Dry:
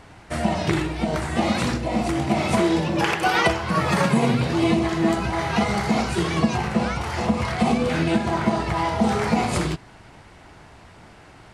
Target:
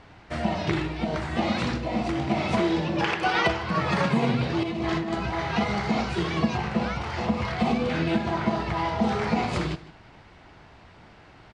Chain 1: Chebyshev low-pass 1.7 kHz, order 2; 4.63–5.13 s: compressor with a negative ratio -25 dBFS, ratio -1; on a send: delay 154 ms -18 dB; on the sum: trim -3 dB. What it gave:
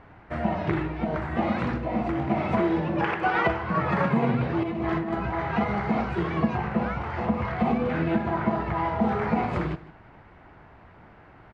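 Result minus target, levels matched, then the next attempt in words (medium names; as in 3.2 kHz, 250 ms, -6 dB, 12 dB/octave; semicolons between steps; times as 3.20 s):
4 kHz band -11.0 dB
Chebyshev low-pass 4.3 kHz, order 2; 4.63–5.13 s: compressor with a negative ratio -25 dBFS, ratio -1; on a send: delay 154 ms -18 dB; on the sum: trim -3 dB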